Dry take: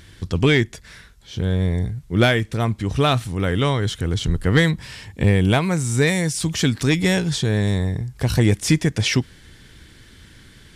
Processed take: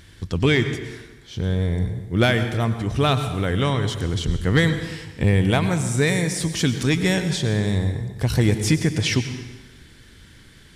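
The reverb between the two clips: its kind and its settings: plate-style reverb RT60 1.2 s, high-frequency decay 0.85×, pre-delay 85 ms, DRR 9 dB; gain -2 dB

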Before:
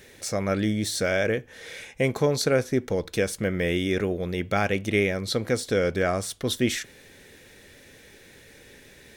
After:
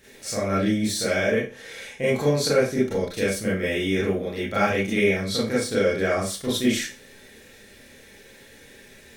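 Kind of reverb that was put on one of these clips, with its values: Schroeder reverb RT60 0.31 s, combs from 28 ms, DRR -8.5 dB; gain -7 dB

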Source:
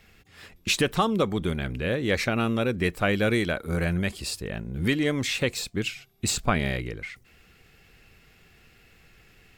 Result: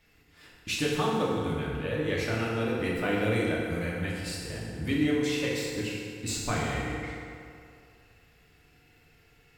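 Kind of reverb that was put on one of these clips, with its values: FDN reverb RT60 2.5 s, low-frequency decay 0.85×, high-frequency decay 0.6×, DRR -5.5 dB; gain -10.5 dB

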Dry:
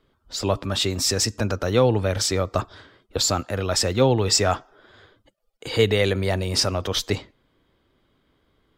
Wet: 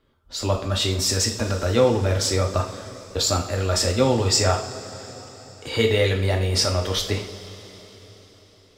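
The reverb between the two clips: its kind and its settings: two-slope reverb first 0.43 s, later 4.7 s, from -18 dB, DRR 1 dB; gain -2 dB

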